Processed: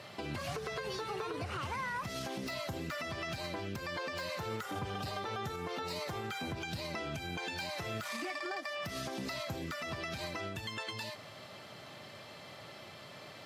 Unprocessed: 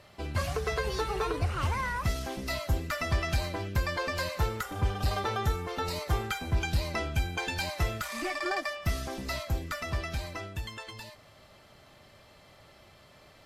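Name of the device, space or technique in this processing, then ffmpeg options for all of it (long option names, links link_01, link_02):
broadcast voice chain: -af "highpass=frequency=110:width=0.5412,highpass=frequency=110:width=1.3066,highshelf=frequency=5600:gain=-4,deesser=0.9,acompressor=threshold=-37dB:ratio=5,equalizer=frequency=3800:width_type=o:width=1.7:gain=3,alimiter=level_in=11.5dB:limit=-24dB:level=0:latency=1:release=155,volume=-11.5dB,volume=6dB"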